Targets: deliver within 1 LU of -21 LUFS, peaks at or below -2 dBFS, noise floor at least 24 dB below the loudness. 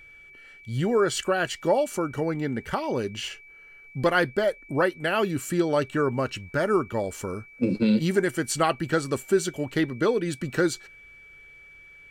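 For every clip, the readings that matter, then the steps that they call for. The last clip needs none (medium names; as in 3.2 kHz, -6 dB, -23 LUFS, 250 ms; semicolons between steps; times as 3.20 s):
steady tone 2.3 kHz; tone level -47 dBFS; loudness -26.0 LUFS; peak level -10.5 dBFS; loudness target -21.0 LUFS
-> band-stop 2.3 kHz, Q 30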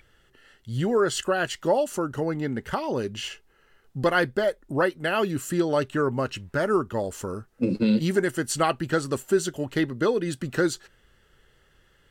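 steady tone not found; loudness -26.0 LUFS; peak level -10.5 dBFS; loudness target -21.0 LUFS
-> trim +5 dB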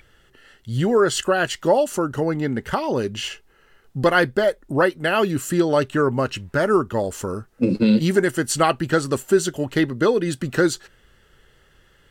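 loudness -21.0 LUFS; peak level -5.5 dBFS; noise floor -57 dBFS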